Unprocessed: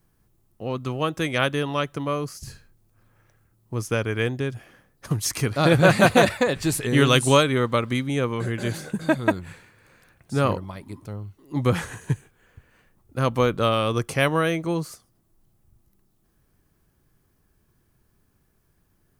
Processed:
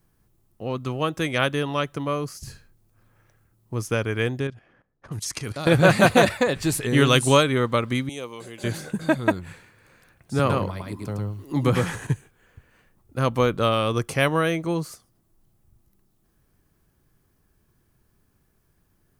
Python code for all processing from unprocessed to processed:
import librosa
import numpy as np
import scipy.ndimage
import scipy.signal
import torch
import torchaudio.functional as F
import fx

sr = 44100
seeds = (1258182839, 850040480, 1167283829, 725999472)

y = fx.chain(x, sr, fx.env_lowpass(base_hz=1400.0, full_db=-19.0),
    fx.high_shelf(hz=5500.0, db=11.5),
    fx.level_steps(step_db=15), at=(4.47, 5.67))
y = fx.chain(y, sr, fx.highpass(hz=1100.0, slope=6),
    fx.peak_eq(hz=1600.0, db=-13.0, octaves=1.0), at=(8.09, 8.64))
y = fx.chain(y, sr, fx.echo_single(ms=107, db=-3.0),
    fx.band_squash(depth_pct=40), at=(10.39, 12.07))